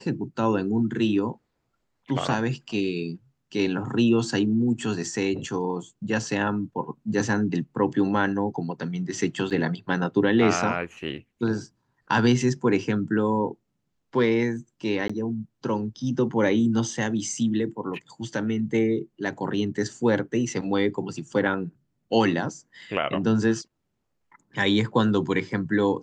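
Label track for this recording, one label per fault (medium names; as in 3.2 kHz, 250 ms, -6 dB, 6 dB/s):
9.500000	9.510000	dropout 6.8 ms
15.080000	15.100000	dropout 15 ms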